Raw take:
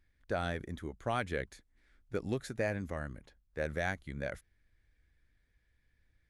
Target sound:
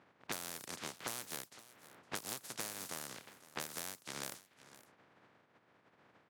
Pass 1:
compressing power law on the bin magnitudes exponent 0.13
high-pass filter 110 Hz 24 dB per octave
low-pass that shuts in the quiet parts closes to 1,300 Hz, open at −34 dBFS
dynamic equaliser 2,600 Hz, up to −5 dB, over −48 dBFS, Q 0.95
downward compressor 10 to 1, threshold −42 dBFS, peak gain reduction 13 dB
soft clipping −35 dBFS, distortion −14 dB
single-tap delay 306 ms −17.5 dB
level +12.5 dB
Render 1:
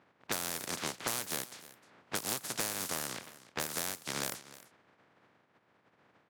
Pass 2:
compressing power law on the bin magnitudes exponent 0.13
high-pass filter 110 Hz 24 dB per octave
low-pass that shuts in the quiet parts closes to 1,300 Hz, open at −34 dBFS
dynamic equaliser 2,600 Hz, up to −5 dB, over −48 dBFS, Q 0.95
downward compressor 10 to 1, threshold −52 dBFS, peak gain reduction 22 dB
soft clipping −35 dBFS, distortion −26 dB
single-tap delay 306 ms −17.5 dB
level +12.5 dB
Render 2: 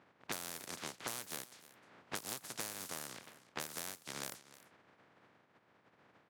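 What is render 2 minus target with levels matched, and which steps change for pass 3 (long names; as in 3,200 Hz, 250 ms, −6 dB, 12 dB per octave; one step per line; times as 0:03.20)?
echo 206 ms early
change: single-tap delay 512 ms −17.5 dB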